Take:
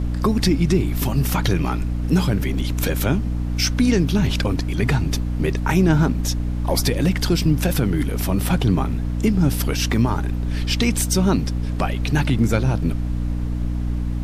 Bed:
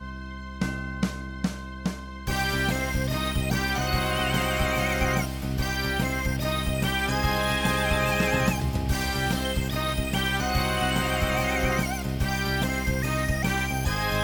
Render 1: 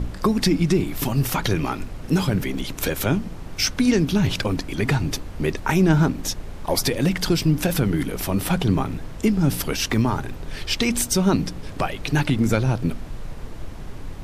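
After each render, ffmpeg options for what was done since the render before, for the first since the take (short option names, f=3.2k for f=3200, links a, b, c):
-af "bandreject=f=60:t=h:w=4,bandreject=f=120:t=h:w=4,bandreject=f=180:t=h:w=4,bandreject=f=240:t=h:w=4,bandreject=f=300:t=h:w=4"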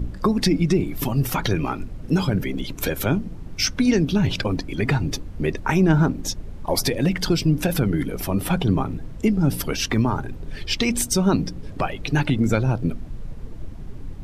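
-af "afftdn=nr=10:nf=-35"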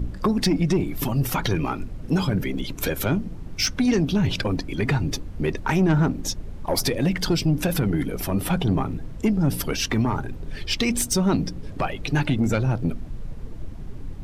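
-af "asoftclip=type=tanh:threshold=-12.5dB"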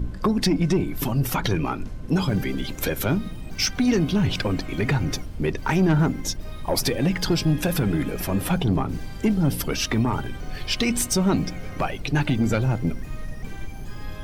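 -filter_complex "[1:a]volume=-16.5dB[a];[0:a][a]amix=inputs=2:normalize=0"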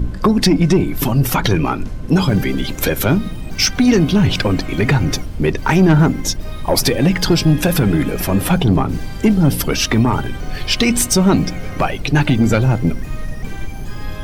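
-af "volume=8dB"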